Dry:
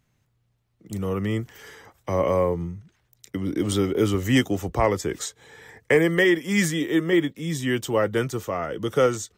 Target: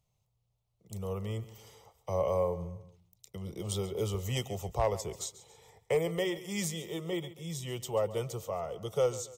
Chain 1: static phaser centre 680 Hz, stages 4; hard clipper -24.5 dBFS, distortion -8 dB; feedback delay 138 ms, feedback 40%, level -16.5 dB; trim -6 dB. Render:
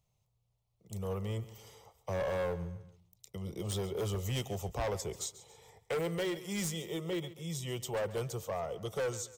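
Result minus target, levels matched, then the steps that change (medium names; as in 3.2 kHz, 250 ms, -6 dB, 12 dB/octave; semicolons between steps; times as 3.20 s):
hard clipper: distortion +20 dB
change: hard clipper -14 dBFS, distortion -29 dB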